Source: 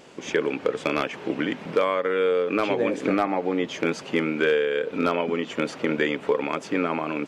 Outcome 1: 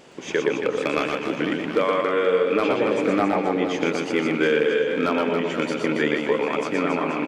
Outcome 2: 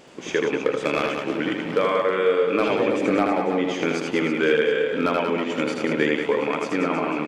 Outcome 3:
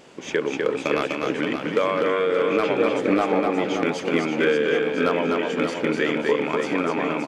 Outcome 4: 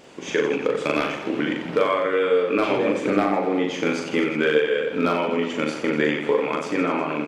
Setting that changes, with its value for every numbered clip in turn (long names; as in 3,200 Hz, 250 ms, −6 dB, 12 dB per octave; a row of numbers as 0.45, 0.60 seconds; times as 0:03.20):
reverse bouncing-ball delay, first gap: 120, 80, 250, 40 milliseconds